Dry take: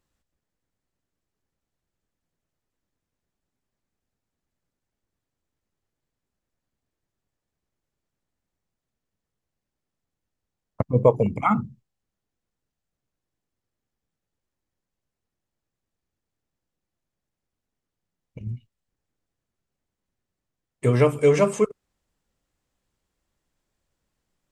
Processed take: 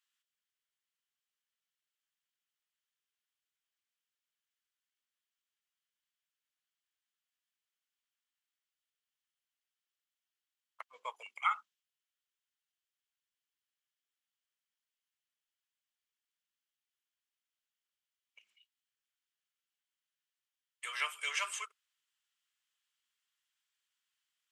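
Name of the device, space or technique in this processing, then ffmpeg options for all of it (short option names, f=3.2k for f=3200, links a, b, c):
headphones lying on a table: -af "highpass=f=1.3k:w=0.5412,highpass=f=1.3k:w=1.3066,equalizer=f=3.1k:t=o:w=0.41:g=8.5,volume=-4.5dB"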